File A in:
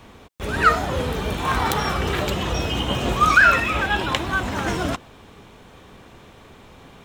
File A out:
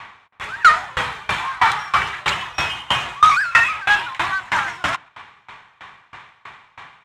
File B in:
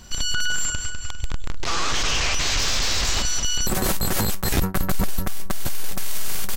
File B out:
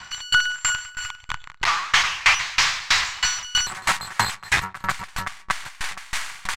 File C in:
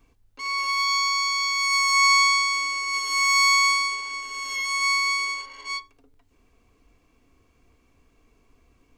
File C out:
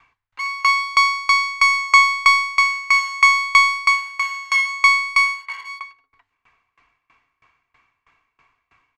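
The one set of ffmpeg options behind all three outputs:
ffmpeg -i in.wav -filter_complex "[0:a]asplit=2[link_01][link_02];[link_02]highpass=frequency=720:poles=1,volume=21dB,asoftclip=type=tanh:threshold=-2.5dB[link_03];[link_01][link_03]amix=inputs=2:normalize=0,lowpass=frequency=2800:poles=1,volume=-6dB,adynamicsmooth=sensitivity=6.5:basefreq=4600,equalizer=frequency=125:width_type=o:width=1:gain=7,equalizer=frequency=250:width_type=o:width=1:gain=-8,equalizer=frequency=500:width_type=o:width=1:gain=-9,equalizer=frequency=1000:width_type=o:width=1:gain=9,equalizer=frequency=2000:width_type=o:width=1:gain=10,equalizer=frequency=4000:width_type=o:width=1:gain=3,equalizer=frequency=8000:width_type=o:width=1:gain=8,asplit=2[link_04][link_05];[link_05]adelay=133,lowpass=frequency=2000:poles=1,volume=-18.5dB,asplit=2[link_06][link_07];[link_07]adelay=133,lowpass=frequency=2000:poles=1,volume=0.36,asplit=2[link_08][link_09];[link_09]adelay=133,lowpass=frequency=2000:poles=1,volume=0.36[link_10];[link_06][link_08][link_10]amix=inputs=3:normalize=0[link_11];[link_04][link_11]amix=inputs=2:normalize=0,aeval=exprs='val(0)*pow(10,-25*if(lt(mod(3.1*n/s,1),2*abs(3.1)/1000),1-mod(3.1*n/s,1)/(2*abs(3.1)/1000),(mod(3.1*n/s,1)-2*abs(3.1)/1000)/(1-2*abs(3.1)/1000))/20)':channel_layout=same,volume=-6dB" out.wav

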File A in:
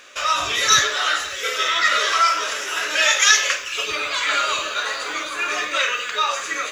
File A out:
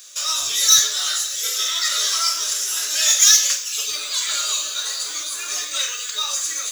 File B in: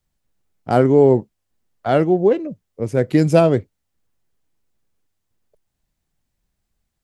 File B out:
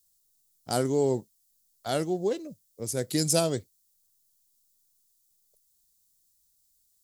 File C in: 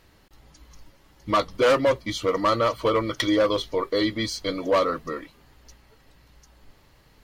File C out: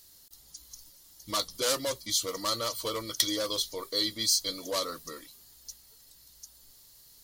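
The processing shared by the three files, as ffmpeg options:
ffmpeg -i in.wav -af "aexciter=amount=3.2:drive=8.7:freq=3600,highshelf=frequency=3700:gain=11,volume=-13dB" out.wav

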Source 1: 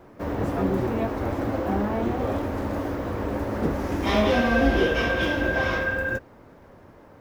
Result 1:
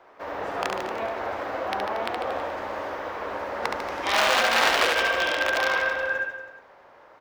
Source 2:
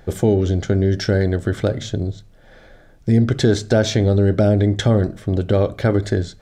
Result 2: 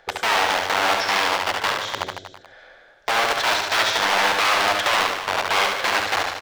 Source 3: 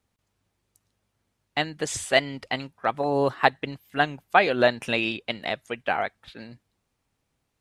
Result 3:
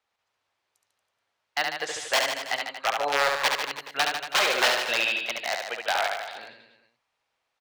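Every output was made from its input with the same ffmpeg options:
ffmpeg -i in.wav -filter_complex "[0:a]aeval=exprs='(mod(5.01*val(0)+1,2)-1)/5.01':channel_layout=same,acrossover=split=530 5400:gain=0.0631 1 0.2[link_01][link_02][link_03];[link_01][link_02][link_03]amix=inputs=3:normalize=0,aecho=1:1:70|147|231.7|324.9|427.4:0.631|0.398|0.251|0.158|0.1,volume=1.5dB" out.wav

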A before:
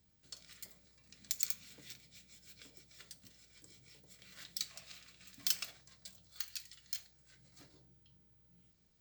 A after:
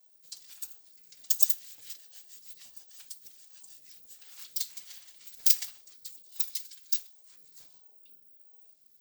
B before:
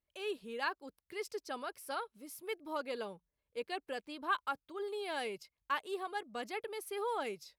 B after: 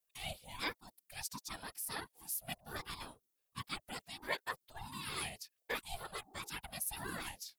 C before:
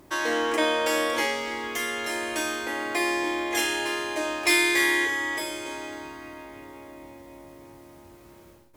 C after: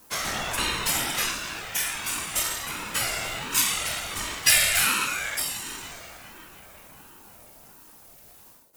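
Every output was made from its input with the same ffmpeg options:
ffmpeg -i in.wav -af "crystalizer=i=6.5:c=0,afftfilt=real='hypot(re,im)*cos(2*PI*random(0))':imag='hypot(re,im)*sin(2*PI*random(1))':win_size=512:overlap=0.75,aeval=exprs='val(0)*sin(2*PI*450*n/s+450*0.4/1.4*sin(2*PI*1.4*n/s))':channel_layout=same" out.wav

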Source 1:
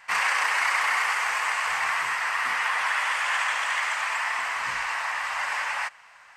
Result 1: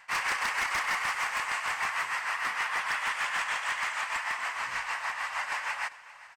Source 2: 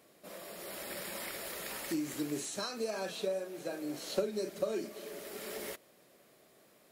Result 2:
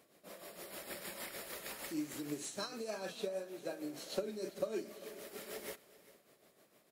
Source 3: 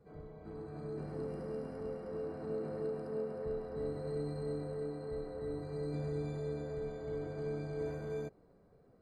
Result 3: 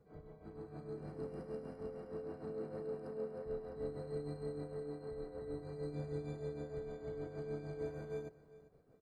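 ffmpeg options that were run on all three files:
ffmpeg -i in.wav -filter_complex "[0:a]asoftclip=type=tanh:threshold=-14dB,tremolo=f=6.5:d=0.58,aeval=exprs='0.0891*(abs(mod(val(0)/0.0891+3,4)-2)-1)':channel_layout=same,asplit=2[link_01][link_02];[link_02]aecho=0:1:396|792:0.126|0.0315[link_03];[link_01][link_03]amix=inputs=2:normalize=0,volume=-2dB" out.wav

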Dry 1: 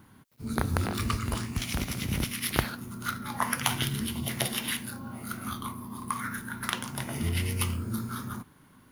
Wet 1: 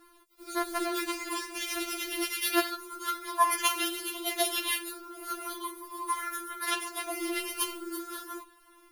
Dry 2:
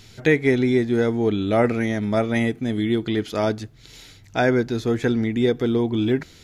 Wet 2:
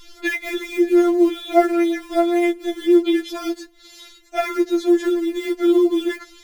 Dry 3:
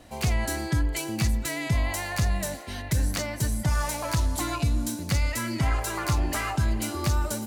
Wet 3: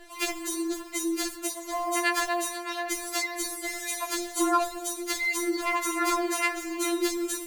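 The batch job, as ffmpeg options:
ffmpeg -i in.wav -filter_complex "[0:a]asplit=2[link_01][link_02];[link_02]acrusher=bits=4:mode=log:mix=0:aa=0.000001,volume=-4dB[link_03];[link_01][link_03]amix=inputs=2:normalize=0,afftfilt=real='re*4*eq(mod(b,16),0)':imag='im*4*eq(mod(b,16),0)':win_size=2048:overlap=0.75" out.wav

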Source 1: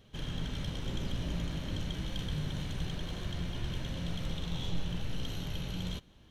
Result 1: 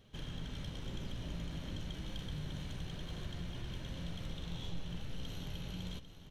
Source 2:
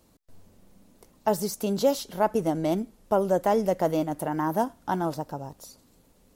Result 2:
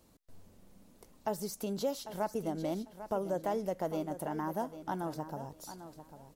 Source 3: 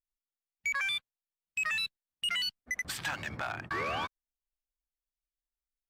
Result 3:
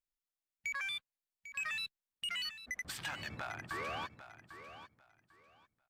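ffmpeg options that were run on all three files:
ffmpeg -i in.wav -af "acompressor=threshold=-41dB:ratio=1.5,aecho=1:1:797|1594|2391:0.251|0.0527|0.0111,volume=-3dB" out.wav

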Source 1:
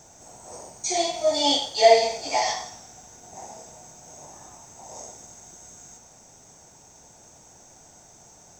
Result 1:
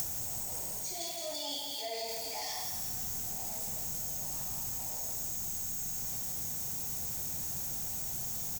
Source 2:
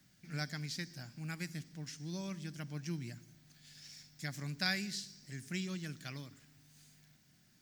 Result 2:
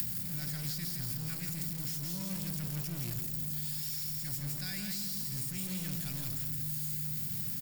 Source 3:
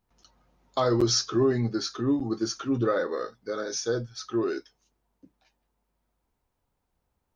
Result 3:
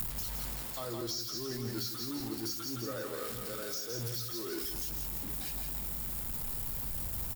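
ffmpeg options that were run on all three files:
ffmpeg -i in.wav -filter_complex "[0:a]aeval=exprs='val(0)+0.5*0.0299*sgn(val(0))':channel_layout=same,areverse,acompressor=threshold=-34dB:ratio=6,areverse,aemphasis=mode=production:type=75fm,bandreject=frequency=6100:width=10,aecho=1:1:166|332|498|664|830:0.531|0.218|0.0892|0.0366|0.015,acrossover=split=210[link_01][link_02];[link_02]acompressor=threshold=-32dB:ratio=10[link_03];[link_01][link_03]amix=inputs=2:normalize=0,volume=-2dB" out.wav

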